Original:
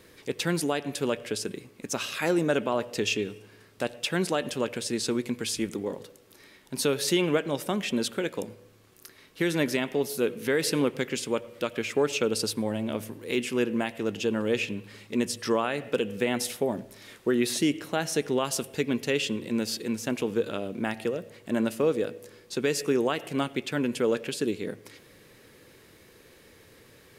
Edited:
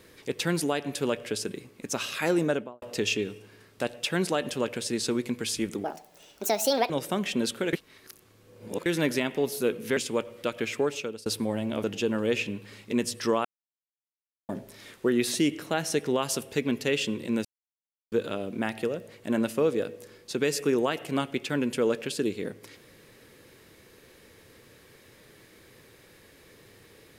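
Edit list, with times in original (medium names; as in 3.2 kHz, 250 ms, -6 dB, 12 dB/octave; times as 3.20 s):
2.42–2.82 s: studio fade out
5.84–7.47 s: speed 154%
8.30–9.43 s: reverse
10.54–11.14 s: delete
11.88–12.43 s: fade out linear, to -24 dB
13.01–14.06 s: delete
15.67–16.71 s: mute
19.67–20.34 s: mute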